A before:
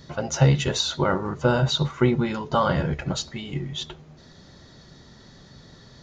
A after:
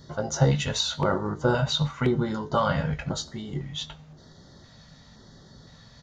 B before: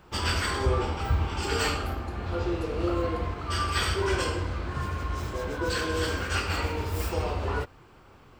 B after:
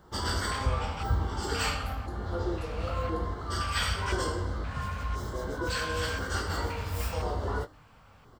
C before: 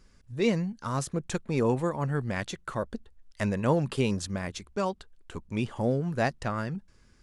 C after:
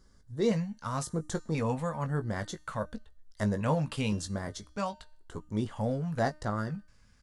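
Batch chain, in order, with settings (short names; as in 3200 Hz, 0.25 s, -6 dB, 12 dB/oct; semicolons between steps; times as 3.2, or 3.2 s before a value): doubler 19 ms -9 dB; LFO notch square 0.97 Hz 360–2500 Hz; de-hum 305 Hz, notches 39; gain -2 dB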